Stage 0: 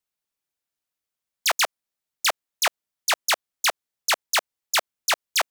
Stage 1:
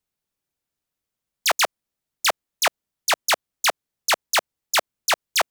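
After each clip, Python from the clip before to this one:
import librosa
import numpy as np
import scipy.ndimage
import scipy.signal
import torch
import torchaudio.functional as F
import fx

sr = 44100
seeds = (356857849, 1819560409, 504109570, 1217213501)

y = fx.low_shelf(x, sr, hz=420.0, db=10.0)
y = y * 10.0 ** (1.0 / 20.0)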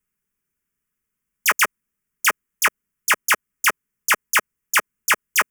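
y = fx.fixed_phaser(x, sr, hz=1700.0, stages=4)
y = y + 0.43 * np.pad(y, (int(4.8 * sr / 1000.0), 0))[:len(y)]
y = y * 10.0 ** (5.5 / 20.0)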